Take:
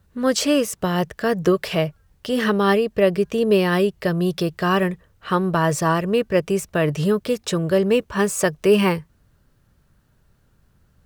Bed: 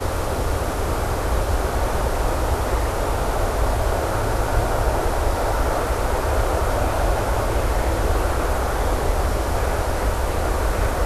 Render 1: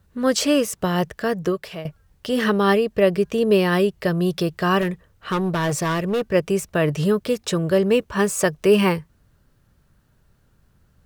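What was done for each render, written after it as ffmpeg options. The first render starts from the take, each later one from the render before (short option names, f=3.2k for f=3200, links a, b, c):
-filter_complex "[0:a]asettb=1/sr,asplit=3[a][b][c];[a]atrim=end=4.814[d];[b]atrim=start=4.81:end=6.31,asetpts=PTS-STARTPTS,afade=t=in:d=0.004:c=qsin,afade=t=out:st=1.496:d=0.004:c=qsin,asoftclip=type=hard:threshold=-18dB[e];[c]atrim=start=6.306[f];[d][e]acrossfade=d=0.004:c1=hsin:c2=qsin[g];[g][f]acrossfade=d=0.004:c1=qsin:c2=hsin,asplit=2[h][i];[h]atrim=end=1.85,asetpts=PTS-STARTPTS,afade=t=out:st=1.1:d=0.75:silence=0.177828[j];[i]atrim=start=1.85,asetpts=PTS-STARTPTS,afade=t=in:d=0.004:c=hsin:silence=0.177828[k];[j][k]concat=n=2:v=0:a=1"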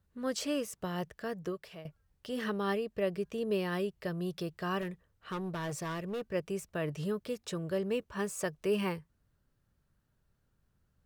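-af "volume=-15dB"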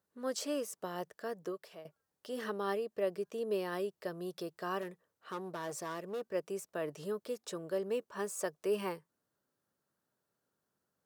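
-af "highpass=330,equalizer=f=2.5k:t=o:w=1.4:g=-7"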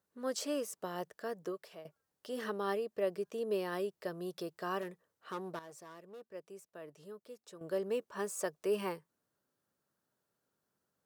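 -filter_complex "[0:a]asplit=3[a][b][c];[a]atrim=end=5.592[d];[b]atrim=start=5.588:end=7.612,asetpts=PTS-STARTPTS,volume=-11.5dB[e];[c]atrim=start=7.608[f];[d][e]acrossfade=d=0.004:c1=hsin:c2=hsin[g];[g][f]acrossfade=d=0.004:c1=hsin:c2=hsin"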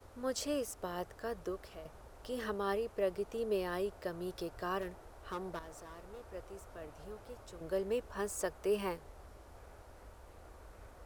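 -filter_complex "[1:a]volume=-33.5dB[a];[0:a][a]amix=inputs=2:normalize=0"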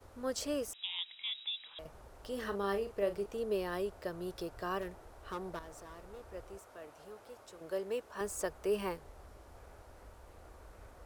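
-filter_complex "[0:a]asettb=1/sr,asplit=3[a][b][c];[a]atrim=end=0.734[d];[b]atrim=start=0.73:end=1.79,asetpts=PTS-STARTPTS,afade=t=in:d=0.004:c=qsin,afade=t=out:st=1.056:d=0.004:c=qsin,lowpass=f=3.3k:t=q:w=0.5098,lowpass=f=3.3k:t=q:w=0.6013,lowpass=f=3.3k:t=q:w=0.9,lowpass=f=3.3k:t=q:w=2.563,afreqshift=-3900[e];[c]atrim=start=1.786[f];[d][e]acrossfade=d=0.004:c1=hsin:c2=qsin[g];[g][f]acrossfade=d=0.004:c1=qsin:c2=hsin,asettb=1/sr,asplit=3[h][i][j];[h]atrim=end=2.414[k];[i]atrim=start=2.41:end=3.26,asetpts=PTS-STARTPTS,afade=t=in:d=0.004:c=qsin,afade=t=out:st=0.846:d=0.004:c=qsin,asplit=2[l][m];[m]adelay=40,volume=-10dB[n];[l][n]amix=inputs=2:normalize=0,atrim=end_sample=37485[o];[j]atrim=start=3.256[p];[k][o]acrossfade=d=0.004:c1=hsin:c2=qsin[q];[q][p]acrossfade=d=0.004:c1=qsin:c2=hsin,asettb=1/sr,asplit=3[r][s][t];[r]atrim=end=6.584[u];[s]atrim=start=6.58:end=8.21,asetpts=PTS-STARTPTS,afade=t=in:d=0.004:c=qsin,afade=t=out:st=1.626:d=0.004:c=qsin,highpass=f=350:p=1[v];[t]atrim=start=8.206[w];[u][v]acrossfade=d=0.004:c1=hsin:c2=qsin[x];[x][w]acrossfade=d=0.004:c1=qsin:c2=hsin"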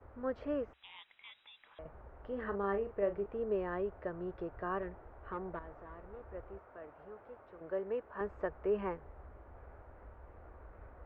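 -af "lowpass=f=2k:w=0.5412,lowpass=f=2k:w=1.3066,equalizer=f=65:t=o:w=0.31:g=5.5"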